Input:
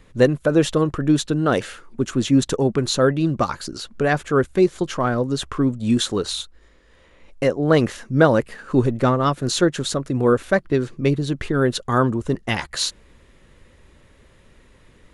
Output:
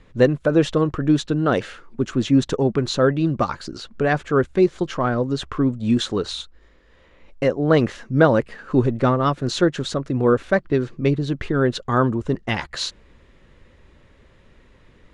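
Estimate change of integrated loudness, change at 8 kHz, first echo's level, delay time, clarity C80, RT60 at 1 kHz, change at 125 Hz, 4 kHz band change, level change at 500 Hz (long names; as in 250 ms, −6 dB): −0.5 dB, −7.5 dB, no echo audible, no echo audible, no reverb audible, no reverb audible, 0.0 dB, −2.5 dB, 0.0 dB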